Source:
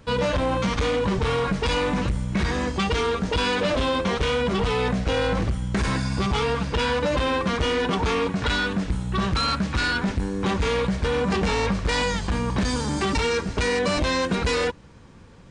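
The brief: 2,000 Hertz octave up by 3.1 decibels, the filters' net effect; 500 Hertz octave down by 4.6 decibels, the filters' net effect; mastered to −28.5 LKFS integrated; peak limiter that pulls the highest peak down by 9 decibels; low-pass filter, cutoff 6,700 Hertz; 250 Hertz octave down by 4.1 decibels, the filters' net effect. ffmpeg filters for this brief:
ffmpeg -i in.wav -af "lowpass=6700,equalizer=frequency=250:width_type=o:gain=-5,equalizer=frequency=500:width_type=o:gain=-4,equalizer=frequency=2000:width_type=o:gain=4.5,volume=0.5dB,alimiter=limit=-21dB:level=0:latency=1" out.wav

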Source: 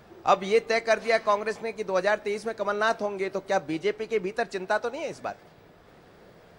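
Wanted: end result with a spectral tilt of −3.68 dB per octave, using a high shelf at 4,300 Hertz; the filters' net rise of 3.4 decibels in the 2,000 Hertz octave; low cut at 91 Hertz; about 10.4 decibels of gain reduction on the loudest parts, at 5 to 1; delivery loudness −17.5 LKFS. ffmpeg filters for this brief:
ffmpeg -i in.wav -af "highpass=91,equalizer=frequency=2000:width_type=o:gain=3.5,highshelf=frequency=4300:gain=4,acompressor=threshold=-27dB:ratio=5,volume=14.5dB" out.wav

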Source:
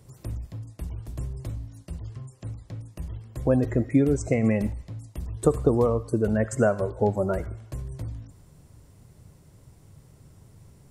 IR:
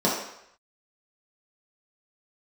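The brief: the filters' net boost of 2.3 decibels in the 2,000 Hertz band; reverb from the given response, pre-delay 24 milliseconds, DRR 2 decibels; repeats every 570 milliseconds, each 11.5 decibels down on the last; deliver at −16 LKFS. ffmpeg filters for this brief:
-filter_complex "[0:a]equalizer=frequency=2000:width_type=o:gain=3,aecho=1:1:570|1140|1710:0.266|0.0718|0.0194,asplit=2[link_01][link_02];[1:a]atrim=start_sample=2205,adelay=24[link_03];[link_02][link_03]afir=irnorm=-1:irlink=0,volume=-17.5dB[link_04];[link_01][link_04]amix=inputs=2:normalize=0,volume=4dB"

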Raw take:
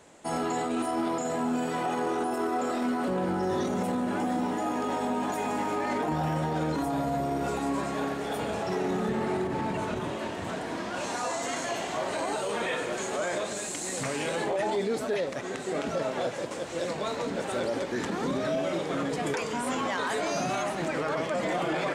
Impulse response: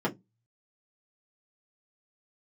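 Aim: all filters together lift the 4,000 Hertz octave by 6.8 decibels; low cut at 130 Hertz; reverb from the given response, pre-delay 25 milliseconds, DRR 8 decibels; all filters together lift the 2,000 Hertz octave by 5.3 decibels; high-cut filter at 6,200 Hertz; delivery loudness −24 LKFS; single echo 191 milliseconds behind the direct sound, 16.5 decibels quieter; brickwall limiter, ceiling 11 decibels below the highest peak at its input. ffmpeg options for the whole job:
-filter_complex "[0:a]highpass=130,lowpass=6200,equalizer=frequency=2000:width_type=o:gain=5,equalizer=frequency=4000:width_type=o:gain=7.5,alimiter=level_in=2dB:limit=-24dB:level=0:latency=1,volume=-2dB,aecho=1:1:191:0.15,asplit=2[link_01][link_02];[1:a]atrim=start_sample=2205,adelay=25[link_03];[link_02][link_03]afir=irnorm=-1:irlink=0,volume=-17.5dB[link_04];[link_01][link_04]amix=inputs=2:normalize=0,volume=8.5dB"

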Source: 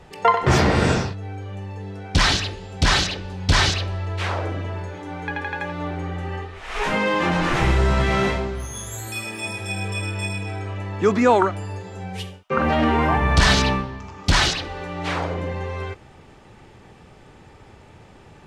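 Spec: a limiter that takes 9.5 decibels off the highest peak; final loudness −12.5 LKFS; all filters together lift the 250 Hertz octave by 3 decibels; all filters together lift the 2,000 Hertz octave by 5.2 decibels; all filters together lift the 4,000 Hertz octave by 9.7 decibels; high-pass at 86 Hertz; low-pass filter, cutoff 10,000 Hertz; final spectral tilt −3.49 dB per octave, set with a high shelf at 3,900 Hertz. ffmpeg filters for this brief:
ffmpeg -i in.wav -af "highpass=86,lowpass=10000,equalizer=frequency=250:width_type=o:gain=4,equalizer=frequency=2000:width_type=o:gain=3,highshelf=frequency=3900:gain=7.5,equalizer=frequency=4000:width_type=o:gain=6.5,volume=8dB,alimiter=limit=-1dB:level=0:latency=1" out.wav

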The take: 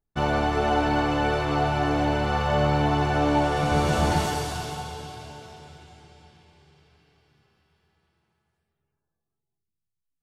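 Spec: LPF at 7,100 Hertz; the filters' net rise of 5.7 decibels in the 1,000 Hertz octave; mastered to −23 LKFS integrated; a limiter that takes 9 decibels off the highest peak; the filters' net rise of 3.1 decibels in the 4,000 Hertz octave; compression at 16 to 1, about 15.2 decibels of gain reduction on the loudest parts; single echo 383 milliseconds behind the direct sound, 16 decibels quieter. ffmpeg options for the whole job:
ffmpeg -i in.wav -af "lowpass=7100,equalizer=frequency=1000:width_type=o:gain=7.5,equalizer=frequency=4000:width_type=o:gain=4,acompressor=threshold=-30dB:ratio=16,alimiter=level_in=5dB:limit=-24dB:level=0:latency=1,volume=-5dB,aecho=1:1:383:0.158,volume=15dB" out.wav

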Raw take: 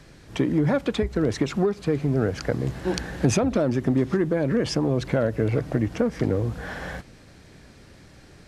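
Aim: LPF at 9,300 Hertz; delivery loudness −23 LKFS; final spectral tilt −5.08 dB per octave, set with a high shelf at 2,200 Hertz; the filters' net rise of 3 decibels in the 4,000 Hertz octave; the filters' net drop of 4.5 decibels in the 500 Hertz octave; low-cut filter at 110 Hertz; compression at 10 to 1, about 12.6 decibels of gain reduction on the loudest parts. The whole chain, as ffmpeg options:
ffmpeg -i in.wav -af "highpass=110,lowpass=9300,equalizer=frequency=500:width_type=o:gain=-5.5,highshelf=frequency=2200:gain=-4,equalizer=frequency=4000:width_type=o:gain=8,acompressor=threshold=-32dB:ratio=10,volume=14dB" out.wav

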